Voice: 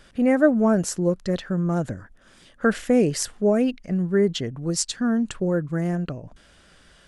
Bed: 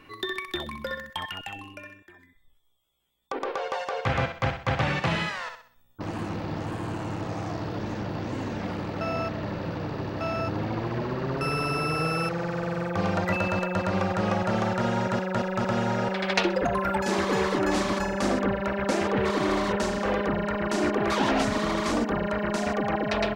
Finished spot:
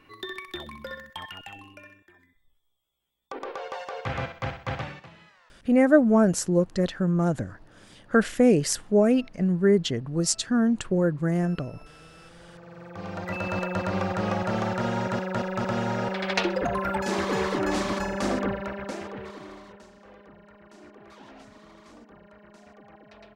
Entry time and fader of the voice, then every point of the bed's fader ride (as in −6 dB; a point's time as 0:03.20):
5.50 s, 0.0 dB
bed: 0:04.76 −5 dB
0:05.12 −25 dB
0:12.19 −25 dB
0:13.59 −1.5 dB
0:18.43 −1.5 dB
0:19.89 −24.5 dB